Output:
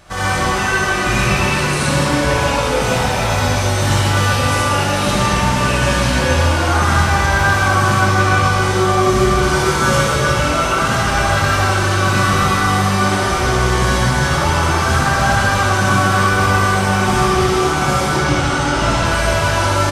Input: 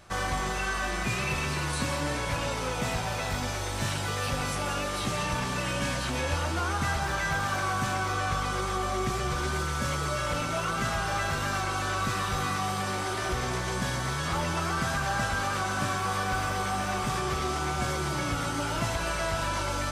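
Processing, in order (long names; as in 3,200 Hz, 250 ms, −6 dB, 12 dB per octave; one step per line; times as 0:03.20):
0:09.42–0:10.07: double-tracking delay 18 ms −2 dB
0:18.09–0:19.05: low-pass filter 8,000 Hz 12 dB per octave
far-end echo of a speakerphone 130 ms, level −7 dB
convolution reverb RT60 1.4 s, pre-delay 50 ms, DRR −6 dB
level +6.5 dB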